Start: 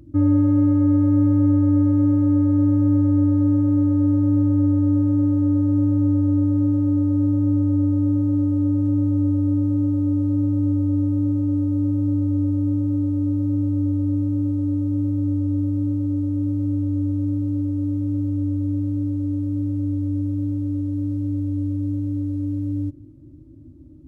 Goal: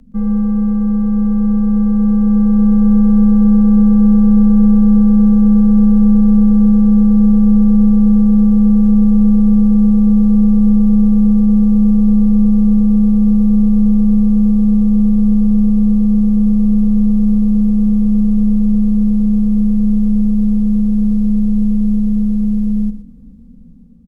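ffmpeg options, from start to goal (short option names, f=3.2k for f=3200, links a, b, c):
-af "dynaudnorm=f=950:g=5:m=10dB,aecho=1:1:120:0.251,afreqshift=-82,volume=1dB"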